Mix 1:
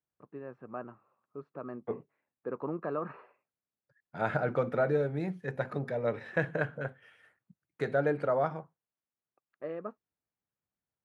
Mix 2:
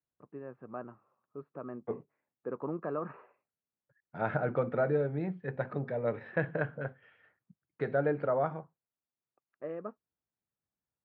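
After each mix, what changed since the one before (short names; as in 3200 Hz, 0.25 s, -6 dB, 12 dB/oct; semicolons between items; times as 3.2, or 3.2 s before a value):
master: add air absorption 340 m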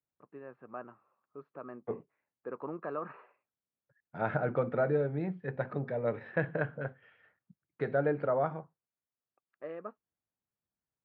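first voice: add tilt +2.5 dB/oct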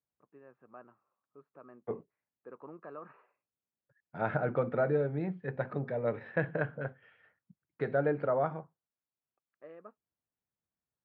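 first voice -8.5 dB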